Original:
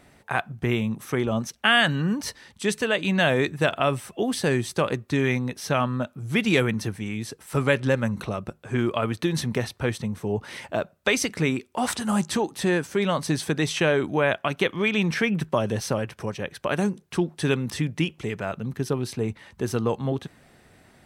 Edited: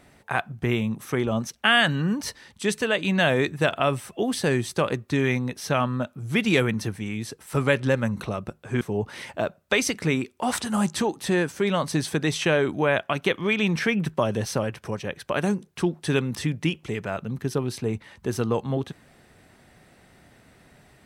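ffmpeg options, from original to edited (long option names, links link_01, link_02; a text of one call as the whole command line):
ffmpeg -i in.wav -filter_complex "[0:a]asplit=2[link_01][link_02];[link_01]atrim=end=8.812[link_03];[link_02]atrim=start=10.158[link_04];[link_03][link_04]acrossfade=duration=0.004:curve1=hsin:curve2=hsin" out.wav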